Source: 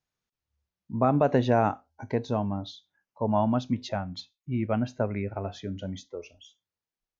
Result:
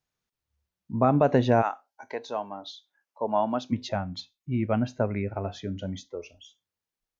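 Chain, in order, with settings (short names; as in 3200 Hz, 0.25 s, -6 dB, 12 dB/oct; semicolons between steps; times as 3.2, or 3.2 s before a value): 1.61–3.71 HPF 820 Hz -> 290 Hz 12 dB/oct; gain +1.5 dB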